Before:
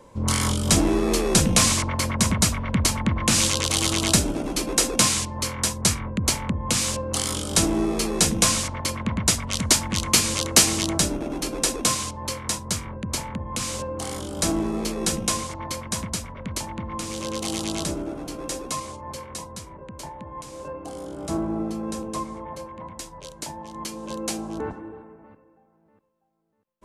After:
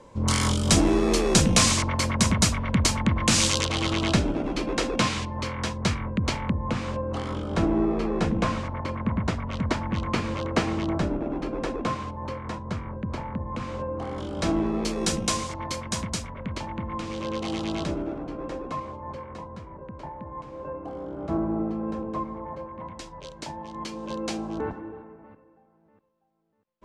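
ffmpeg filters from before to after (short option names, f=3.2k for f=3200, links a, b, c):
-af "asetnsamples=n=441:p=0,asendcmd='3.65 lowpass f 3000;6.52 lowpass f 1600;14.18 lowpass f 3200;14.85 lowpass f 7000;16.3 lowpass f 3000;18.18 lowpass f 1700;22.79 lowpass f 4400',lowpass=7.7k"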